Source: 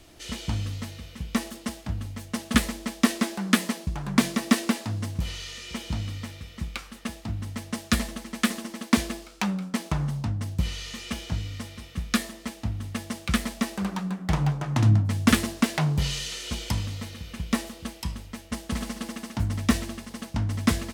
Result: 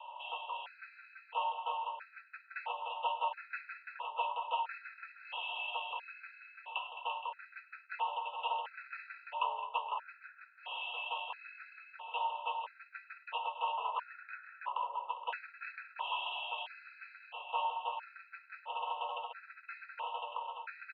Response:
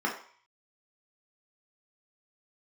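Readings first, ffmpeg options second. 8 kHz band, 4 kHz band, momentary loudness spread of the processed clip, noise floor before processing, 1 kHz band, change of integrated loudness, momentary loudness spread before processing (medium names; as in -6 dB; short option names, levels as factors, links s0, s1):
under -40 dB, -10.5 dB, 14 LU, -47 dBFS, +1.0 dB, -11.5 dB, 12 LU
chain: -filter_complex "[0:a]equalizer=f=1100:t=o:w=0.38:g=-13.5,areverse,acompressor=threshold=0.0178:ratio=4,areverse,asplit=3[s0][s1][s2];[s0]bandpass=f=730:t=q:w=8,volume=1[s3];[s1]bandpass=f=1090:t=q:w=8,volume=0.501[s4];[s2]bandpass=f=2440:t=q:w=8,volume=0.355[s5];[s3][s4][s5]amix=inputs=3:normalize=0,asplit=2[s6][s7];[s7]highpass=f=720:p=1,volume=3.16,asoftclip=type=tanh:threshold=0.0133[s8];[s6][s8]amix=inputs=2:normalize=0,lowpass=f=2100:p=1,volume=0.501,highpass=f=270:t=q:w=0.5412,highpass=f=270:t=q:w=1.307,lowpass=f=2900:t=q:w=0.5176,lowpass=f=2900:t=q:w=0.7071,lowpass=f=2900:t=q:w=1.932,afreqshift=250,asplit=2[s9][s10];[s10]aecho=0:1:101|212|215|339|470:0.106|0.178|0.15|0.501|0.237[s11];[s9][s11]amix=inputs=2:normalize=0,afftfilt=real='re*gt(sin(2*PI*0.75*pts/sr)*(1-2*mod(floor(b*sr/1024/1300),2)),0)':imag='im*gt(sin(2*PI*0.75*pts/sr)*(1-2*mod(floor(b*sr/1024/1300),2)),0)':win_size=1024:overlap=0.75,volume=7.08"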